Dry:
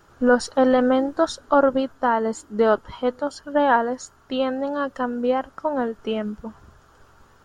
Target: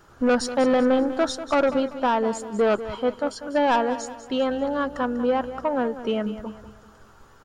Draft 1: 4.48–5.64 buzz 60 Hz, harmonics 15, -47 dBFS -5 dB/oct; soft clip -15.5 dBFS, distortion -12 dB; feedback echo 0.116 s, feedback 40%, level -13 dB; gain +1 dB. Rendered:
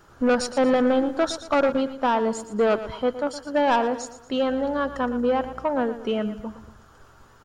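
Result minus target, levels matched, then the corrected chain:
echo 78 ms early
4.48–5.64 buzz 60 Hz, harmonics 15, -47 dBFS -5 dB/oct; soft clip -15.5 dBFS, distortion -12 dB; feedback echo 0.194 s, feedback 40%, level -13 dB; gain +1 dB

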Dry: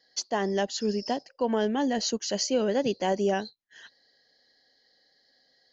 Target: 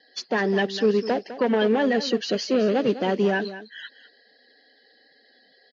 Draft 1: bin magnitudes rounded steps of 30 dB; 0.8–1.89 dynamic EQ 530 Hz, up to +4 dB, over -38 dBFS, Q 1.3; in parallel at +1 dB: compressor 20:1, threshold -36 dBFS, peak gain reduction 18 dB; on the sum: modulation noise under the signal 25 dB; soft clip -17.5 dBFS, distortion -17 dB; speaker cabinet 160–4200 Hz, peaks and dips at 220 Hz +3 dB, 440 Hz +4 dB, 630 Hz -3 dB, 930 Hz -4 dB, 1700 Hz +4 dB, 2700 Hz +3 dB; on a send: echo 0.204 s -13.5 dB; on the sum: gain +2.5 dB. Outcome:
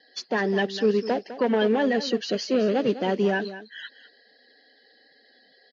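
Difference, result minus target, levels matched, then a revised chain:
compressor: peak gain reduction +7 dB
bin magnitudes rounded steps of 30 dB; 0.8–1.89 dynamic EQ 530 Hz, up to +4 dB, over -38 dBFS, Q 1.3; in parallel at +1 dB: compressor 20:1, threshold -28.5 dBFS, peak gain reduction 10.5 dB; on the sum: modulation noise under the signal 25 dB; soft clip -17.5 dBFS, distortion -15 dB; speaker cabinet 160–4200 Hz, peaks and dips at 220 Hz +3 dB, 440 Hz +4 dB, 630 Hz -3 dB, 930 Hz -4 dB, 1700 Hz +4 dB, 2700 Hz +3 dB; on a send: echo 0.204 s -13.5 dB; on the sum: gain +2.5 dB

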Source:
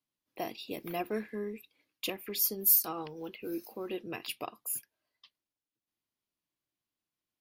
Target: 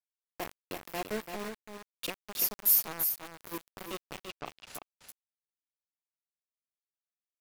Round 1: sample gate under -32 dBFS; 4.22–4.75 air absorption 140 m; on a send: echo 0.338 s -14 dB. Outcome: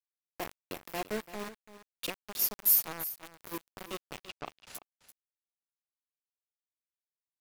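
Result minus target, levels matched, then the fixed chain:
echo-to-direct -7.5 dB
sample gate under -32 dBFS; 4.22–4.75 air absorption 140 m; on a send: echo 0.338 s -6.5 dB

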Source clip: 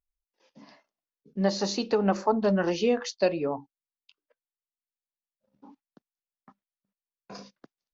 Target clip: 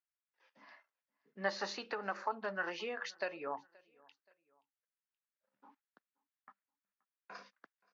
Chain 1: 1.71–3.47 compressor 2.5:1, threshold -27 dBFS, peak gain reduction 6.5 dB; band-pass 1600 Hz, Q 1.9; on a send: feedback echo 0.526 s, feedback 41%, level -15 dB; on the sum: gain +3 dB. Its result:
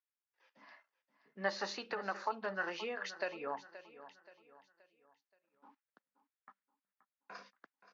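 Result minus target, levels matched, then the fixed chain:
echo-to-direct +11.5 dB
1.71–3.47 compressor 2.5:1, threshold -27 dBFS, peak gain reduction 6.5 dB; band-pass 1600 Hz, Q 1.9; on a send: feedback echo 0.526 s, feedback 41%, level -26.5 dB; on the sum: gain +3 dB

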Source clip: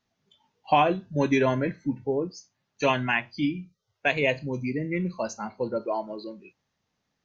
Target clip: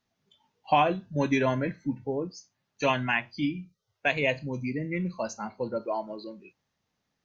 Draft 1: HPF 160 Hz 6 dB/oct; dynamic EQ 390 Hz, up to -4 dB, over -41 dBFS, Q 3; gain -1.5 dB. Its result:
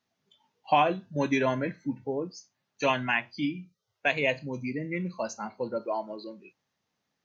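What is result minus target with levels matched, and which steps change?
125 Hz band -3.0 dB
remove: HPF 160 Hz 6 dB/oct

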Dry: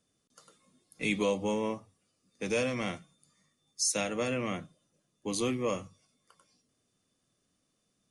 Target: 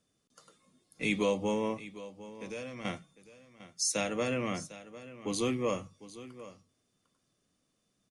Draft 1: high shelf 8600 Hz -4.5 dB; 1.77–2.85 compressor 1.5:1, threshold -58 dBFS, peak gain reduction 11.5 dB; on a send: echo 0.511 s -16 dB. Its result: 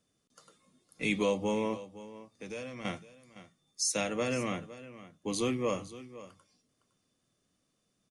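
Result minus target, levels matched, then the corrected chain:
echo 0.241 s early
high shelf 8600 Hz -4.5 dB; 1.77–2.85 compressor 1.5:1, threshold -58 dBFS, peak gain reduction 11.5 dB; on a send: echo 0.752 s -16 dB

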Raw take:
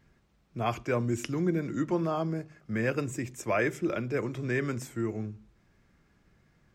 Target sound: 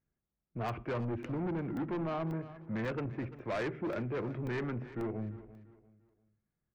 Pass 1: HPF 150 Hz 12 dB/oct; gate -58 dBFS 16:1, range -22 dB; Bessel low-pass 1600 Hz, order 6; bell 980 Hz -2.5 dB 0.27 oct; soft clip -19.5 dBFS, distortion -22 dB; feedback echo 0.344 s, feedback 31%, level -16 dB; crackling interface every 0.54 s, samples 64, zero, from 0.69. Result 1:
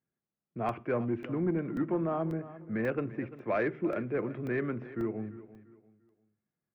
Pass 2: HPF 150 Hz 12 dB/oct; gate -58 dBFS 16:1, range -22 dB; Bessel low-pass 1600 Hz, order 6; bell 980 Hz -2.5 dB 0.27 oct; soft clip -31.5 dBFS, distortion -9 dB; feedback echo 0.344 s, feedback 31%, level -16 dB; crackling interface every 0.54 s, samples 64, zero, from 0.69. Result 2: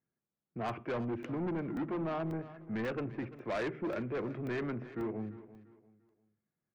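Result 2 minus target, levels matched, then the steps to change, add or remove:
125 Hz band -3.0 dB
remove: HPF 150 Hz 12 dB/oct

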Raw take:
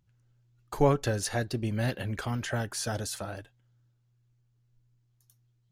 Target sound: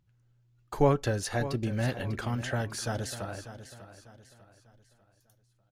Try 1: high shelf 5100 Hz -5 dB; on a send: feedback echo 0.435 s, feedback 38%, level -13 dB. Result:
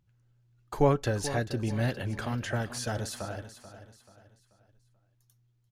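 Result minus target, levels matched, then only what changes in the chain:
echo 0.161 s early
change: feedback echo 0.596 s, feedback 38%, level -13 dB

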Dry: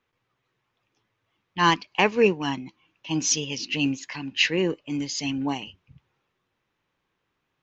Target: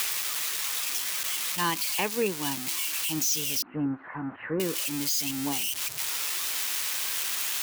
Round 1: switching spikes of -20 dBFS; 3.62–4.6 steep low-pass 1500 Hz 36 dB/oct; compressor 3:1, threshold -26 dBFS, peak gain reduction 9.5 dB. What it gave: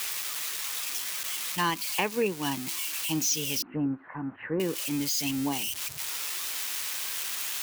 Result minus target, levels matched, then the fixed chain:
switching spikes: distortion -7 dB
switching spikes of -12.5 dBFS; 3.62–4.6 steep low-pass 1500 Hz 36 dB/oct; compressor 3:1, threshold -26 dBFS, peak gain reduction 9.5 dB

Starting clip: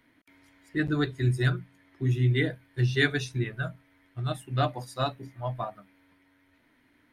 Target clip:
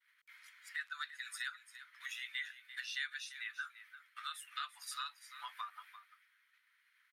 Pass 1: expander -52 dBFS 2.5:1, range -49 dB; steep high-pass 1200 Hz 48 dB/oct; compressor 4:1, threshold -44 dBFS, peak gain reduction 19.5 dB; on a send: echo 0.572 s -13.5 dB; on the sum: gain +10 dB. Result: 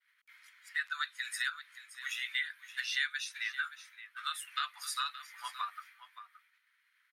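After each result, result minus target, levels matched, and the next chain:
echo 0.228 s late; compressor: peak gain reduction -7 dB
expander -52 dBFS 2.5:1, range -49 dB; steep high-pass 1200 Hz 48 dB/oct; compressor 4:1, threshold -44 dBFS, peak gain reduction 19.5 dB; on a send: echo 0.344 s -13.5 dB; on the sum: gain +10 dB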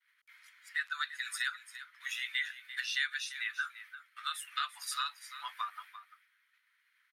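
compressor: peak gain reduction -7 dB
expander -52 dBFS 2.5:1, range -49 dB; steep high-pass 1200 Hz 48 dB/oct; compressor 4:1, threshold -53.5 dBFS, peak gain reduction 26.5 dB; on a send: echo 0.344 s -13.5 dB; on the sum: gain +10 dB

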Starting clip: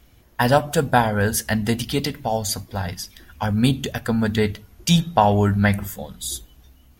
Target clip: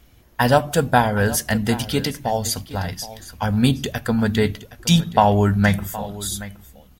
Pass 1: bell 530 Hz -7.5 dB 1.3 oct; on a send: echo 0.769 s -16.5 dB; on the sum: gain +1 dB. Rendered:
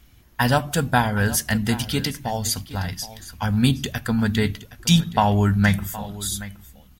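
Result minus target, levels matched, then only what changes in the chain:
500 Hz band -4.5 dB
remove: bell 530 Hz -7.5 dB 1.3 oct

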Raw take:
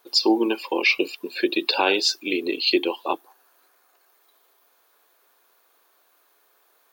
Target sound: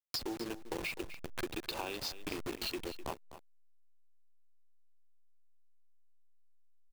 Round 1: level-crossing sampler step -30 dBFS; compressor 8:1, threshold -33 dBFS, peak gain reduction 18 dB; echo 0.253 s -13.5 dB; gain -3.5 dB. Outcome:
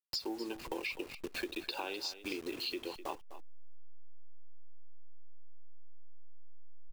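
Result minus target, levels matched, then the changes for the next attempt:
level-crossing sampler: distortion -6 dB
change: level-crossing sampler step -20 dBFS

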